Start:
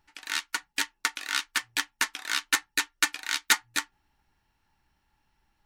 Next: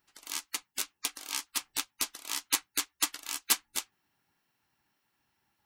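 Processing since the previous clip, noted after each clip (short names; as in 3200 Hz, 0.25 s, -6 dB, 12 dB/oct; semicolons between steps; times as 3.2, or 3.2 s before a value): high shelf 11000 Hz +11 dB; spectral gate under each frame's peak -10 dB weak; gain -2.5 dB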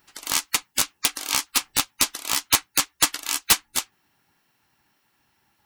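in parallel at -2 dB: vocal rider 0.5 s; on the sum: wrapped overs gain 10 dB; gain +6 dB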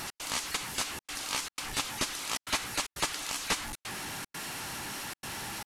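delta modulation 64 kbps, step -24.5 dBFS; step gate "x.xxxxxxxx.xxx" 152 bpm -60 dB; gain -7.5 dB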